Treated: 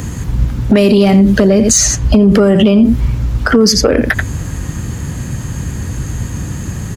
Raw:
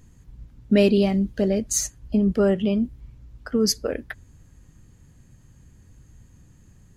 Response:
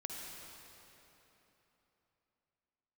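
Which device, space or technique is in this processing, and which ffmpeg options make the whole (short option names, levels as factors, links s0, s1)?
mastering chain: -filter_complex "[0:a]highpass=56,equalizer=f=1200:t=o:w=1.4:g=2.5,aecho=1:1:85:0.158,acrossover=split=310|7400[s0][s1][s2];[s0]acompressor=threshold=0.0398:ratio=4[s3];[s1]acompressor=threshold=0.0398:ratio=4[s4];[s2]acompressor=threshold=0.00282:ratio=4[s5];[s3][s4][s5]amix=inputs=3:normalize=0,acompressor=threshold=0.0398:ratio=2,asoftclip=type=tanh:threshold=0.112,asoftclip=type=hard:threshold=0.0668,alimiter=level_in=47.3:limit=0.891:release=50:level=0:latency=1,volume=0.841"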